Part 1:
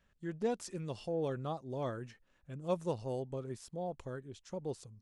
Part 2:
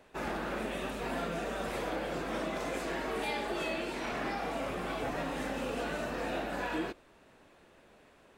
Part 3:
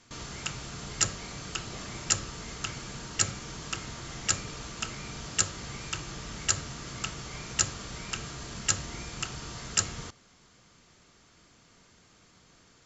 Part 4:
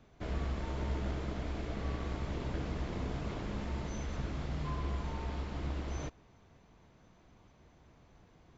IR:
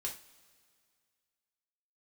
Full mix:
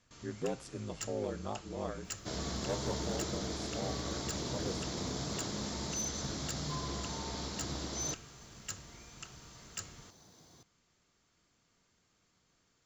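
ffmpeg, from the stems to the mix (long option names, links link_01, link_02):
-filter_complex "[0:a]aeval=exprs='val(0)*sin(2*PI*51*n/s)':channel_layout=same,volume=0dB,asplit=2[link_01][link_02];[link_02]volume=-10.5dB[link_03];[2:a]highshelf=frequency=5500:gain=9,volume=-14.5dB[link_04];[3:a]highpass=110,aexciter=amount=12.5:drive=3:freq=3900,adelay=2050,volume=1dB[link_05];[4:a]atrim=start_sample=2205[link_06];[link_03][link_06]afir=irnorm=-1:irlink=0[link_07];[link_01][link_04][link_05][link_07]amix=inputs=4:normalize=0,asoftclip=type=hard:threshold=-28dB,highshelf=frequency=4900:gain=-6"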